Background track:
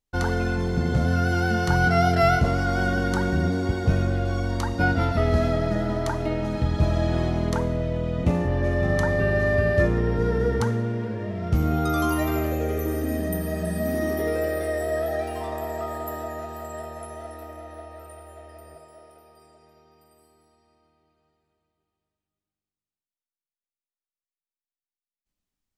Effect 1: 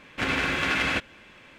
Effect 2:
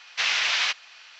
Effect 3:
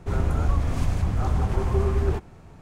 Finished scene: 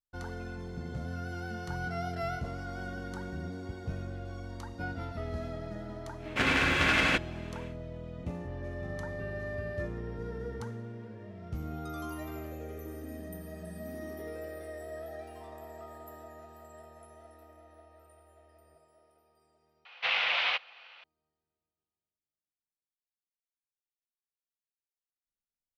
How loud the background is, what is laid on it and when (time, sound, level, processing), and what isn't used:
background track -16 dB
6.18 s: add 1 -0.5 dB, fades 0.10 s
19.85 s: replace with 2 -2.5 dB + cabinet simulation 140–3300 Hz, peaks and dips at 140 Hz +5 dB, 360 Hz -4 dB, 520 Hz +8 dB, 760 Hz +5 dB, 1.7 kHz -5 dB
not used: 3

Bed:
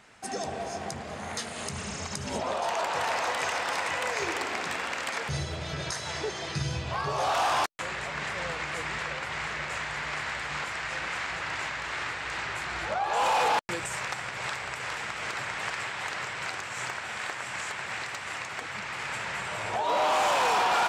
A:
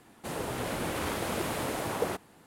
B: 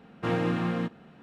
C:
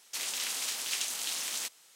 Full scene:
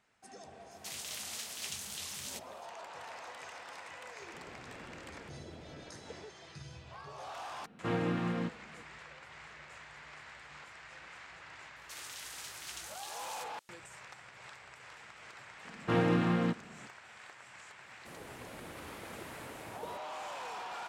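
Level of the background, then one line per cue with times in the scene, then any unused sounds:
bed -18 dB
0.71 s: add C -8 dB + warped record 78 rpm, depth 100 cents
4.08 s: add A -16 dB + boxcar filter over 35 samples
7.61 s: add B -5.5 dB
11.76 s: add C -12.5 dB
15.65 s: add B -1 dB
17.81 s: add A -15 dB

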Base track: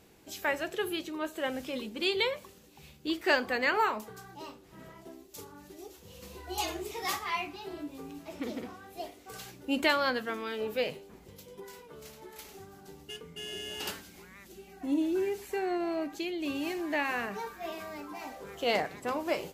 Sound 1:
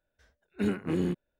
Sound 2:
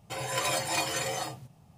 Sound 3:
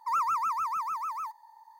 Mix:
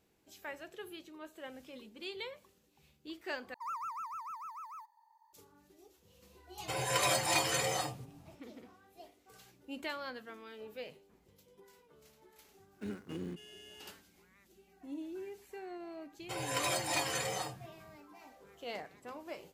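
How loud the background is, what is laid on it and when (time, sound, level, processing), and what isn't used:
base track -14 dB
3.54 s: replace with 3 -12.5 dB
6.58 s: add 2 -1 dB
12.22 s: add 1 -13 dB + dead-time distortion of 0.085 ms
16.19 s: add 2 -4.5 dB

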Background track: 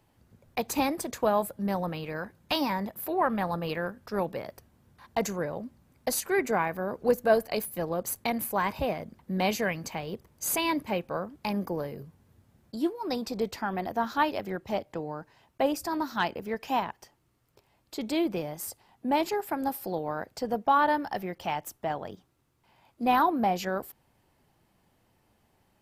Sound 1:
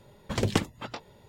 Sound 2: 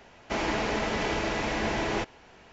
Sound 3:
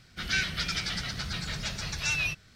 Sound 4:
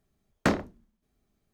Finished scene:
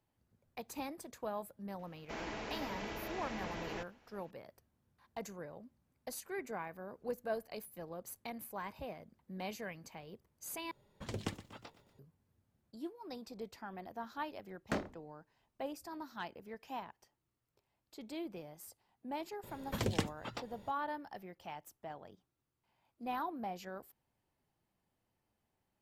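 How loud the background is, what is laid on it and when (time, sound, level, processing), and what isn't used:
background track -15.5 dB
1.79 s: add 2 -14.5 dB
10.71 s: replace with 1 -14.5 dB + bit-crushed delay 120 ms, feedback 55%, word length 8-bit, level -15 dB
14.26 s: add 4 -12.5 dB
19.43 s: add 1 -7.5 dB + three bands compressed up and down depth 40%
not used: 3

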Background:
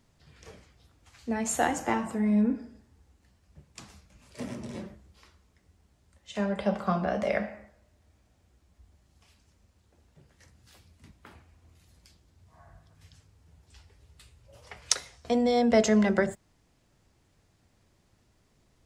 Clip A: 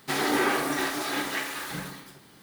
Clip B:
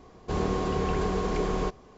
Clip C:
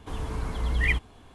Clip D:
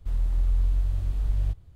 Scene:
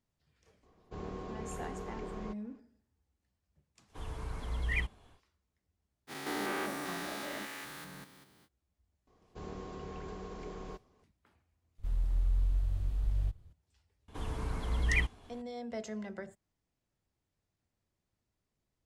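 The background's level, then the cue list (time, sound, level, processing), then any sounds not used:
background -18.5 dB
0.63 s: add B -14.5 dB + treble shelf 4.7 kHz -8 dB
3.88 s: add C -8.5 dB, fades 0.10 s + peaking EQ 240 Hz -5.5 dB 0.78 oct
6.07 s: add A -9.5 dB, fades 0.05 s + spectrogram pixelated in time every 200 ms
9.07 s: add B -16.5 dB
11.78 s: add D -6.5 dB
14.08 s: add C -5 dB

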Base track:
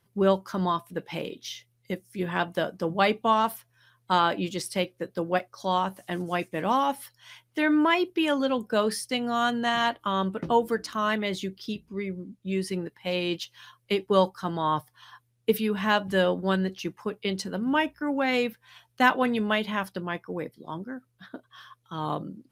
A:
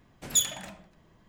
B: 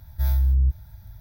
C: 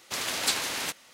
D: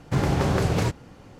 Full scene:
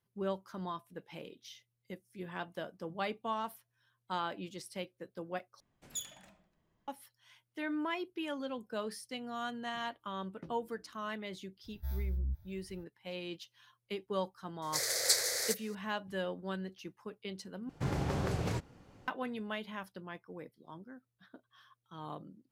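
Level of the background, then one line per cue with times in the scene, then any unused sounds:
base track -14 dB
5.60 s: replace with A -16.5 dB
11.64 s: add B -15.5 dB
14.62 s: add C -9.5 dB + FFT filter 130 Hz 0 dB, 220 Hz -22 dB, 500 Hz +14 dB, 960 Hz -8 dB, 2 kHz +8 dB, 2.8 kHz -14 dB, 4.4 kHz +10 dB
17.69 s: replace with D -11.5 dB

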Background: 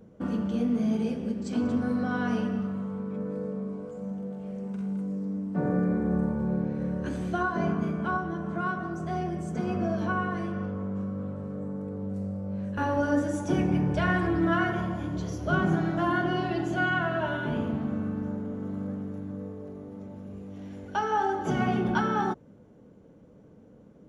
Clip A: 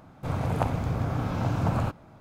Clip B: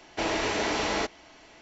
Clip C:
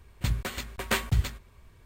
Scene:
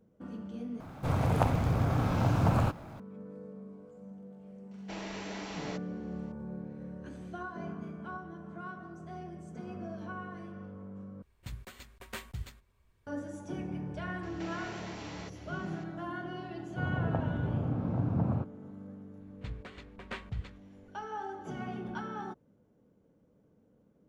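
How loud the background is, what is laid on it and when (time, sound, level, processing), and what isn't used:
background -13 dB
0.80 s: replace with A -1 dB + companding laws mixed up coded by mu
4.71 s: add B -14.5 dB
11.22 s: replace with C -15 dB
14.23 s: add B -4 dB + compression 4:1, threshold -41 dBFS
16.53 s: add A -1.5 dB + band-pass filter 210 Hz, Q 0.7
19.20 s: add C -13 dB + low-pass 3.3 kHz

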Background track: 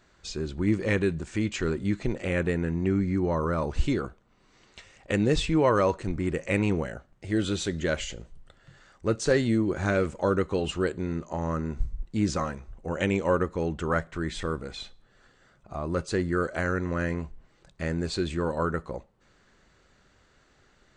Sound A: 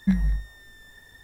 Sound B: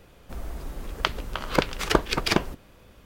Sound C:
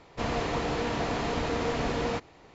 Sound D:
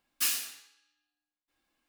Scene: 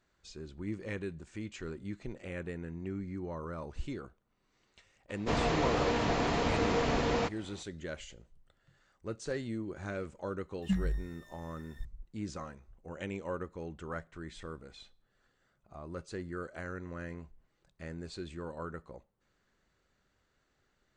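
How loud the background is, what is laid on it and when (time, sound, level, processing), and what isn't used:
background track -13.5 dB
5.09 s: add C -0.5 dB
10.62 s: add A -9 dB
not used: B, D

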